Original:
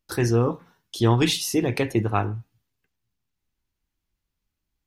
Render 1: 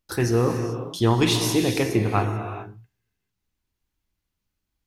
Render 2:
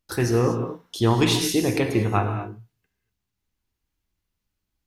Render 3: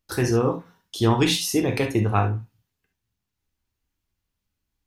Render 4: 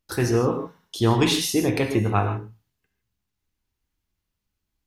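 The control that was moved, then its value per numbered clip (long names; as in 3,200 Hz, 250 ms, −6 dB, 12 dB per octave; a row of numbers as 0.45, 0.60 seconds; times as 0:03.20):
reverb whose tail is shaped and stops, gate: 460, 270, 90, 180 milliseconds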